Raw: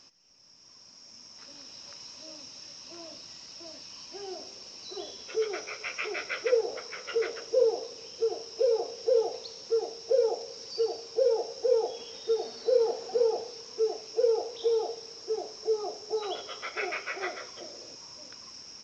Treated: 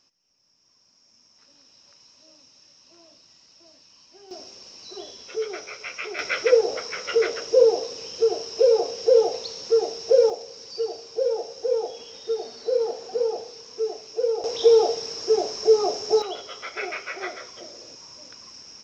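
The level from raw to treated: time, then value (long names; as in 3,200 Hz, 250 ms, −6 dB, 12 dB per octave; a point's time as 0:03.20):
−8.5 dB
from 0:04.31 +1 dB
from 0:06.19 +8 dB
from 0:10.30 +1 dB
from 0:14.44 +11.5 dB
from 0:16.22 +2 dB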